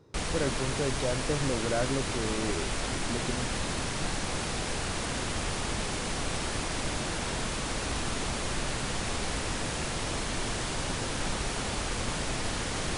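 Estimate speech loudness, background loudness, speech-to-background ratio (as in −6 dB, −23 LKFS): −34.0 LKFS, −32.0 LKFS, −2.0 dB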